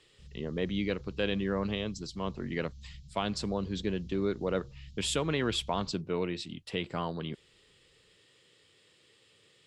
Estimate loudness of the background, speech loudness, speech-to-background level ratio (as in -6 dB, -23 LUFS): -51.0 LUFS, -34.0 LUFS, 17.0 dB